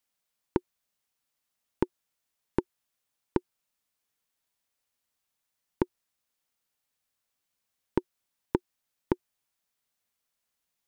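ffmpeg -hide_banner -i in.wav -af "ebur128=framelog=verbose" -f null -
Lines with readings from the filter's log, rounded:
Integrated loudness:
  I:         -35.1 LUFS
  Threshold: -45.3 LUFS
Loudness range:
  LRA:         4.8 LU
  Threshold: -60.2 LUFS
  LRA low:   -43.8 LUFS
  LRA high:  -39.0 LUFS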